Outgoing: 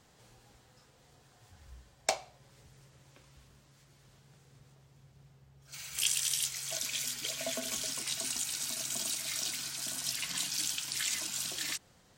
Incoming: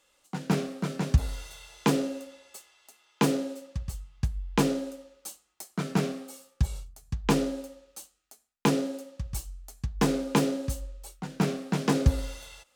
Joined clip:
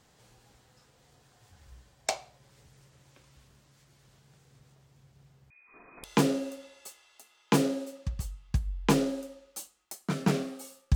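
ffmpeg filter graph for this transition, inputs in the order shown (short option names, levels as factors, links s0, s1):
-filter_complex "[0:a]asettb=1/sr,asplit=3[s0][s1][s2];[s0]atrim=end=5.504[s3];[s1]atrim=start=5.5:end=6.04,asetpts=PTS-STARTPTS,afade=t=in:d=0.004:c=qsin,afade=t=out:st=0.536:d=0.004:c=qsin,lowpass=f=2200:t=q:w=0.5098,lowpass=f=2200:t=q:w=0.6013,lowpass=f=2200:t=q:w=0.9,lowpass=f=2200:t=q:w=2.563,afreqshift=-2600[s4];[s2]atrim=start=6.036[s5];[s3][s4]acrossfade=d=0.004:c1=hsin:c2=qsin[s6];[s6][s5]acrossfade=d=0.004:c1=qsin:c2=hsin,apad=whole_dur=10.95,atrim=end=10.95,atrim=end=6.042[s7];[1:a]atrim=start=1.728:end=6.64[s8];[s7][s8]acrossfade=d=0.004:c1=hsin:c2=hsin"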